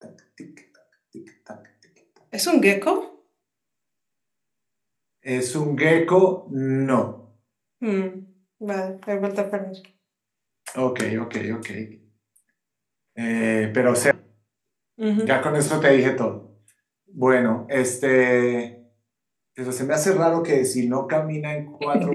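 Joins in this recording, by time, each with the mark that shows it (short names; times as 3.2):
14.11 sound cut off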